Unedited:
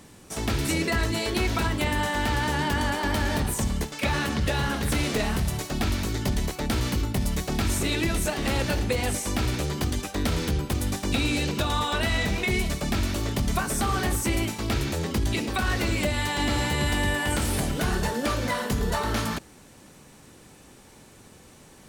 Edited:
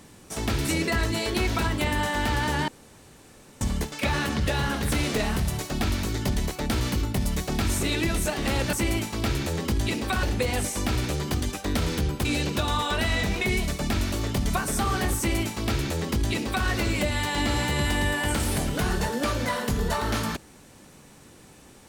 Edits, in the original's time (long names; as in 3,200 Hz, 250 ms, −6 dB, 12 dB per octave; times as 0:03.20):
0:02.68–0:03.61: fill with room tone
0:10.75–0:11.27: remove
0:14.19–0:15.69: duplicate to 0:08.73